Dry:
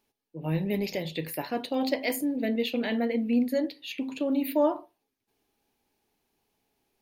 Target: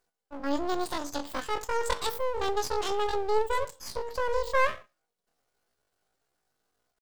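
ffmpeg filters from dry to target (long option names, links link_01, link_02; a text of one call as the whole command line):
ffmpeg -i in.wav -af "asetrate=78577,aresample=44100,atempo=0.561231,aeval=exprs='max(val(0),0)':channel_layout=same,volume=2dB" out.wav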